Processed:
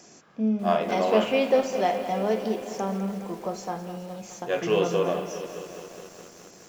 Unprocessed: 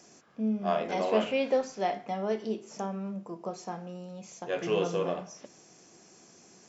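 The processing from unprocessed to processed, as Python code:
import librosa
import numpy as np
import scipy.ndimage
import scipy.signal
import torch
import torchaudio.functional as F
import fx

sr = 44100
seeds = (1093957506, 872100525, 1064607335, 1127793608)

y = fx.rev_spring(x, sr, rt60_s=3.7, pass_ms=(31,), chirp_ms=60, drr_db=14.5)
y = fx.echo_crushed(y, sr, ms=208, feedback_pct=80, bits=8, wet_db=-12.5)
y = F.gain(torch.from_numpy(y), 5.0).numpy()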